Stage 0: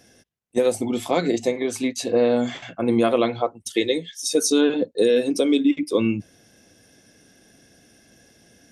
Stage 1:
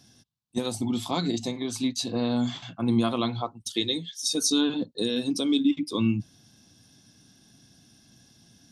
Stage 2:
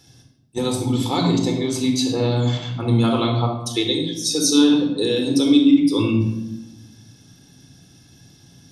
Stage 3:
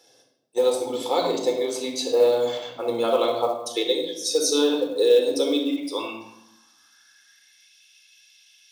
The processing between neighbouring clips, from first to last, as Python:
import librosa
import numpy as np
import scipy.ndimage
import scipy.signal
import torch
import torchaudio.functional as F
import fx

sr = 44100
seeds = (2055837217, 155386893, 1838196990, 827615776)

y1 = fx.graphic_eq(x, sr, hz=(125, 250, 500, 1000, 2000, 4000), db=(9, 4, -12, 7, -9, 10))
y1 = F.gain(torch.from_numpy(y1), -5.5).numpy()
y2 = fx.room_shoebox(y1, sr, seeds[0], volume_m3=3500.0, walls='furnished', distance_m=4.2)
y2 = F.gain(torch.from_numpy(y2), 3.5).numpy()
y3 = fx.filter_sweep_highpass(y2, sr, from_hz=510.0, to_hz=2500.0, start_s=5.66, end_s=7.77, q=4.4)
y3 = fx.quant_float(y3, sr, bits=4)
y3 = F.gain(torch.from_numpy(y3), -4.5).numpy()